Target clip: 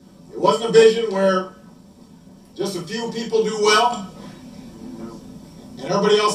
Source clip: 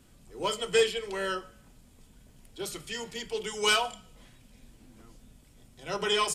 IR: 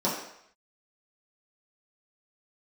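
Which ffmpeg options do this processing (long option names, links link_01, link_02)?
-filter_complex "[1:a]atrim=start_sample=2205,atrim=end_sample=3087[link_01];[0:a][link_01]afir=irnorm=-1:irlink=0,asettb=1/sr,asplit=3[link_02][link_03][link_04];[link_02]atrim=end=3.924[link_05];[link_03]atrim=start=3.92:end=5.88,asetpts=PTS-STARTPTS,afade=type=in:duration=0.004:curve=qsin,afade=type=out:start_time=1.956:duration=0.004:curve=qsin,acontrast=52[link_06];[link_04]atrim=start=5.876[link_07];[link_05][link_06]acrossfade=duration=0.004:curve1=hsin:curve2=qsin[link_08];[link_08][link_07]acrossfade=duration=0.004:curve1=qsin:curve2=hsin"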